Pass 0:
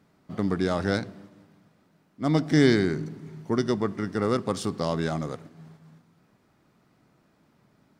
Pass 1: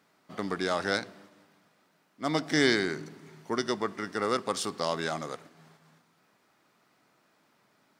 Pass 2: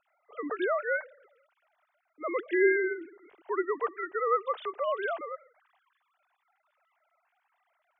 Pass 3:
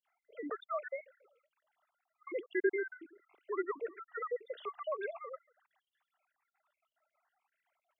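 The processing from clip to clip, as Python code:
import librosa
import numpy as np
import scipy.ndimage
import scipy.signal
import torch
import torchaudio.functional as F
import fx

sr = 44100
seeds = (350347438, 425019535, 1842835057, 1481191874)

y1 = fx.highpass(x, sr, hz=880.0, slope=6)
y1 = y1 * 10.0 ** (3.0 / 20.0)
y2 = fx.sine_speech(y1, sr)
y3 = fx.spec_dropout(y2, sr, seeds[0], share_pct=47)
y3 = y3 * 10.0 ** (-5.5 / 20.0)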